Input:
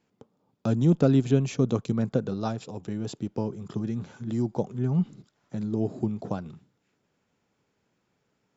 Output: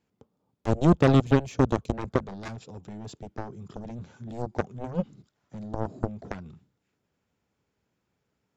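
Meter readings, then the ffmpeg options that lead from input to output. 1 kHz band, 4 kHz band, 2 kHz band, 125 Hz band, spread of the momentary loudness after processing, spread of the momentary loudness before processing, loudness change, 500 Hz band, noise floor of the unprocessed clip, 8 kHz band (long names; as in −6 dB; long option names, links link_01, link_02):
+6.0 dB, +1.5 dB, +7.5 dB, −1.5 dB, 21 LU, 13 LU, +1.5 dB, +1.0 dB, −75 dBFS, can't be measured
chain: -af "aeval=exprs='0.355*(cos(1*acos(clip(val(0)/0.355,-1,1)))-cos(1*PI/2))+0.0794*(cos(7*acos(clip(val(0)/0.355,-1,1)))-cos(7*PI/2))':channel_layout=same,equalizer=frequency=63:width=1.2:gain=10"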